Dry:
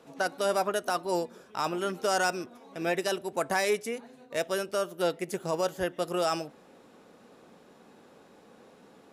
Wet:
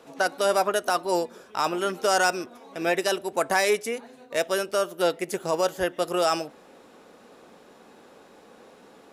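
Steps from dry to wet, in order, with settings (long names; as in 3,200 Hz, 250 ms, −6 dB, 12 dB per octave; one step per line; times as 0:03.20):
parametric band 140 Hz −6.5 dB 1.7 octaves
level +5.5 dB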